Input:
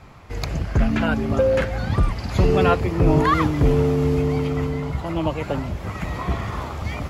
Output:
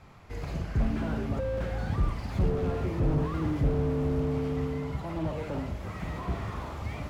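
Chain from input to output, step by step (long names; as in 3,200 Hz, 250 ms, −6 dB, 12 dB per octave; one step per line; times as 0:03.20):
four-comb reverb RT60 0.32 s, DRR 6.5 dB
slew-rate limiting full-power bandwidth 37 Hz
level −8 dB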